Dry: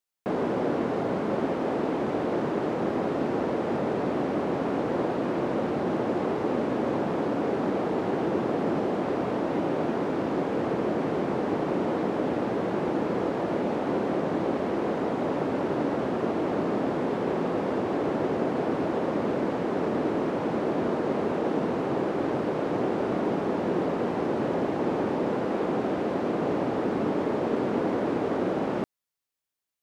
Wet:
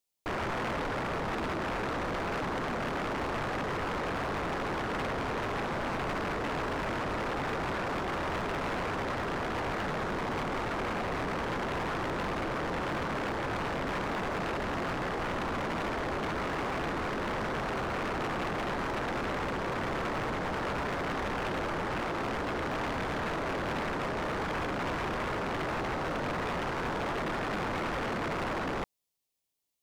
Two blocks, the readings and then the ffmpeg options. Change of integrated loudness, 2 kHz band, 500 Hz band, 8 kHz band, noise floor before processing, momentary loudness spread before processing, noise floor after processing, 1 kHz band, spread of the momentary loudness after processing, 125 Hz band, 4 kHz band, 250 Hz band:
−5.5 dB, +4.5 dB, −8.5 dB, can't be measured, −30 dBFS, 1 LU, −34 dBFS, −1.0 dB, 0 LU, −3.0 dB, +4.5 dB, −9.5 dB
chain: -af "equalizer=frequency=1500:width=1.5:gain=-10.5,aeval=exprs='0.188*(cos(1*acos(clip(val(0)/0.188,-1,1)))-cos(1*PI/2))+0.0668*(cos(7*acos(clip(val(0)/0.188,-1,1)))-cos(7*PI/2))':channel_layout=same,asoftclip=type=hard:threshold=-29.5dB"

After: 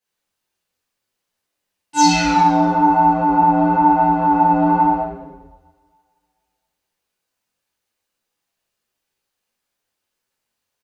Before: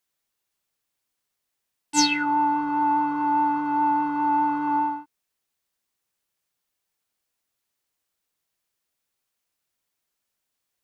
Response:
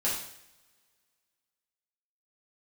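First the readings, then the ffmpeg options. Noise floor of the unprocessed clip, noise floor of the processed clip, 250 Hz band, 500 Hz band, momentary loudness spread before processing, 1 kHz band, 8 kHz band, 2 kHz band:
−81 dBFS, −79 dBFS, +9.0 dB, can't be measured, 4 LU, +8.0 dB, +3.5 dB, +4.5 dB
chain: -filter_complex "[0:a]asplit=9[link_01][link_02][link_03][link_04][link_05][link_06][link_07][link_08][link_09];[link_02]adelay=81,afreqshift=-120,volume=-9dB[link_10];[link_03]adelay=162,afreqshift=-240,volume=-12.9dB[link_11];[link_04]adelay=243,afreqshift=-360,volume=-16.8dB[link_12];[link_05]adelay=324,afreqshift=-480,volume=-20.6dB[link_13];[link_06]adelay=405,afreqshift=-600,volume=-24.5dB[link_14];[link_07]adelay=486,afreqshift=-720,volume=-28.4dB[link_15];[link_08]adelay=567,afreqshift=-840,volume=-32.3dB[link_16];[link_09]adelay=648,afreqshift=-960,volume=-36.1dB[link_17];[link_01][link_10][link_11][link_12][link_13][link_14][link_15][link_16][link_17]amix=inputs=9:normalize=0,flanger=delay=18:depth=5.5:speed=0.98,highshelf=frequency=6900:gain=-6.5[link_18];[1:a]atrim=start_sample=2205[link_19];[link_18][link_19]afir=irnorm=-1:irlink=0"

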